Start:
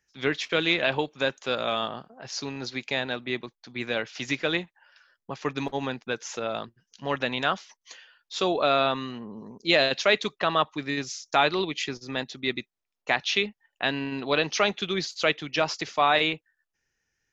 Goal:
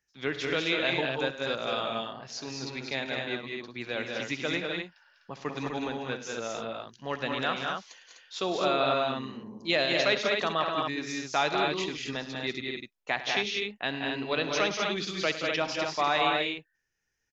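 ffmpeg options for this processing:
-af "aecho=1:1:66|104|176|198|251:0.178|0.178|0.335|0.631|0.562,volume=-5.5dB"

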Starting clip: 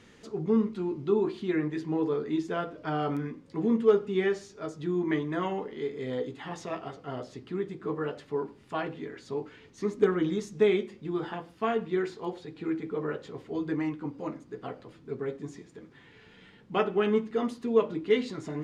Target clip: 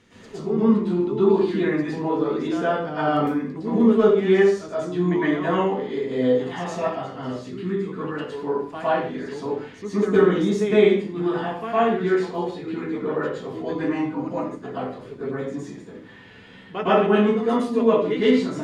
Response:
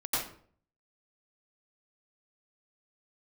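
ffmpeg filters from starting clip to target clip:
-filter_complex "[0:a]asettb=1/sr,asplit=3[a][b][c];[a]atrim=end=7.074[d];[b]atrim=start=7.07:end=8.27,asetpts=PTS-STARTPTS,afade=t=in:d=0.004:c=qsin,afade=t=out:st=1.196:d=0.004:c=qsin,equalizer=f=660:t=o:w=1.1:g=-10[e];[c]atrim=start=8.266[f];[d][e]acrossfade=d=0.004:c1=hsin:c2=qsin[g];[g][f]acrossfade=d=0.004:c1=qsin:c2=hsin[h];[1:a]atrim=start_sample=2205,afade=t=out:st=0.28:d=0.01,atrim=end_sample=12789,asetrate=35280,aresample=44100[i];[h][i]afir=irnorm=-1:irlink=0"

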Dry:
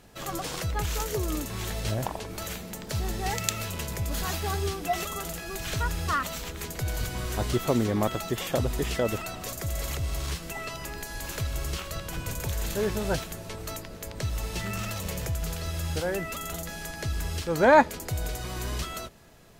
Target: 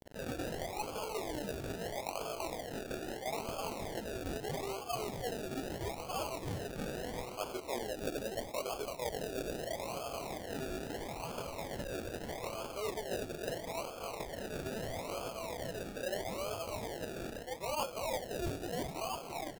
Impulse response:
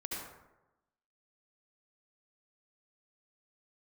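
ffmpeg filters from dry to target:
-filter_complex "[0:a]highpass=f=540:w=0.5412,highpass=f=540:w=1.3066,tiltshelf=f=700:g=9,asplit=9[a][b][c][d][e][f][g][h][i];[b]adelay=335,afreqshift=35,volume=-6.5dB[j];[c]adelay=670,afreqshift=70,volume=-11.1dB[k];[d]adelay=1005,afreqshift=105,volume=-15.7dB[l];[e]adelay=1340,afreqshift=140,volume=-20.2dB[m];[f]adelay=1675,afreqshift=175,volume=-24.8dB[n];[g]adelay=2010,afreqshift=210,volume=-29.4dB[o];[h]adelay=2345,afreqshift=245,volume=-34dB[p];[i]adelay=2680,afreqshift=280,volume=-38.6dB[q];[a][j][k][l][m][n][o][p][q]amix=inputs=9:normalize=0,acrusher=bits=8:mix=0:aa=0.000001,lowpass=f=7.6k:w=0.5412,lowpass=f=7.6k:w=1.3066,acompressor=mode=upward:threshold=-40dB:ratio=2.5,flanger=delay=18:depth=6.6:speed=0.84,acrusher=samples=33:mix=1:aa=0.000001:lfo=1:lforange=19.8:lforate=0.77,adynamicequalizer=threshold=0.00316:dfrequency=1600:dqfactor=1:tfrequency=1600:tqfactor=1:attack=5:release=100:ratio=0.375:range=3:mode=cutabove:tftype=bell,areverse,acompressor=threshold=-39dB:ratio=8,areverse,volume=4.5dB"

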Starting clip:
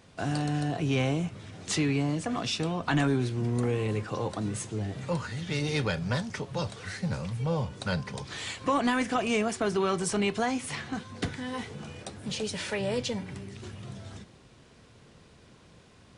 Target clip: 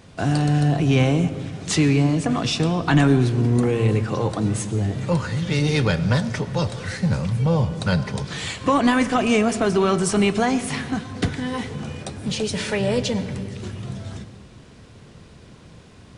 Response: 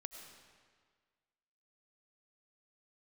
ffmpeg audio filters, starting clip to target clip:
-filter_complex "[0:a]asplit=2[a][b];[1:a]atrim=start_sample=2205,lowshelf=f=380:g=11[c];[b][c]afir=irnorm=-1:irlink=0,volume=-2dB[d];[a][d]amix=inputs=2:normalize=0,volume=3.5dB"

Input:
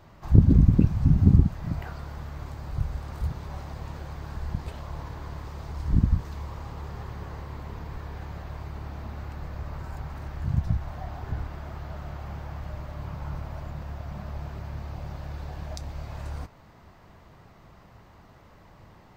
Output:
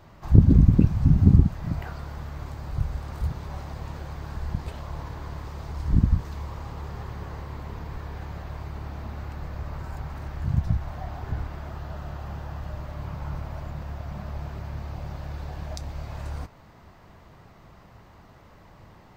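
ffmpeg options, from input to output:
-filter_complex "[0:a]asettb=1/sr,asplit=3[a][b][c];[a]atrim=end=11.694[d];[b]atrim=start=11.69:end=12.83,asetpts=PTS-STARTPTS,afade=t=in:d=0.004:c=qsin,afade=t=out:st=1.136:d=0.004:c=qsin,bandreject=f=2.2k:w=11[e];[c]atrim=start=12.826[f];[d][e]acrossfade=d=0.004:c1=hsin:c2=qsin[g];[g][f]acrossfade=d=0.004:c1=qsin:c2=hsin,volume=1.5dB"

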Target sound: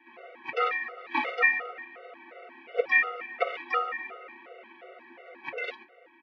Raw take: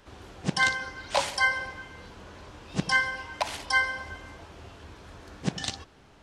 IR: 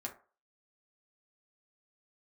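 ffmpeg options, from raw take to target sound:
-filter_complex "[0:a]aecho=1:1:5:0.77,aeval=exprs='val(0)*sin(2*PI*300*n/s)':c=same,highpass=f=370:w=0.5412,highpass=f=370:w=1.3066,equalizer=f=560:t=q:w=4:g=3,equalizer=f=800:t=q:w=4:g=-5,equalizer=f=1.2k:t=q:w=4:g=-5,equalizer=f=2.3k:t=q:w=4:g=9,lowpass=f=2.5k:w=0.5412,lowpass=f=2.5k:w=1.3066,asplit=2[a][b];[1:a]atrim=start_sample=2205[c];[b][c]afir=irnorm=-1:irlink=0,volume=0.5dB[d];[a][d]amix=inputs=2:normalize=0,afftfilt=real='re*gt(sin(2*PI*2.8*pts/sr)*(1-2*mod(floor(b*sr/1024/380),2)),0)':imag='im*gt(sin(2*PI*2.8*pts/sr)*(1-2*mod(floor(b*sr/1024/380),2)),0)':win_size=1024:overlap=0.75"

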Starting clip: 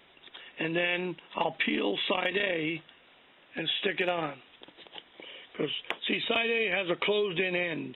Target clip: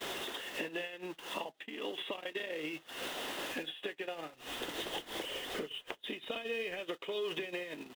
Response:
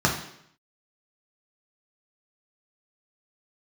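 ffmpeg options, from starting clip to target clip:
-filter_complex "[0:a]aeval=exprs='val(0)+0.5*0.0133*sgn(val(0))':c=same,asettb=1/sr,asplit=3[a][b][c];[a]atrim=end=4.334[d];[b]atrim=start=4.33:end=6.8,asetpts=PTS-STARTPTS,afade=t=in:d=0.004:c=qsin,afade=t=out:st=2.466:d=0.004:c=qsin,lowshelf=f=140:g=10[e];[c]atrim=start=6.796[f];[d][e]acrossfade=d=0.004:c1=hsin:c2=qsin[g];[g][f]acrossfade=d=0.004:c1=qsin:c2=hsin,acompressor=threshold=-41dB:ratio=8,bass=f=250:g=-13,treble=f=4k:g=-3,acrossover=split=570|2200[h][i][j];[h]acompressor=threshold=-50dB:ratio=4[k];[i]acompressor=threshold=-56dB:ratio=4[l];[j]acompressor=threshold=-52dB:ratio=4[m];[k][l][m]amix=inputs=3:normalize=0,bandreject=f=2.3k:w=9.7,aecho=1:1:39|70:0.126|0.178,agate=range=-32dB:threshold=-49dB:ratio=16:detection=peak,volume=12dB"

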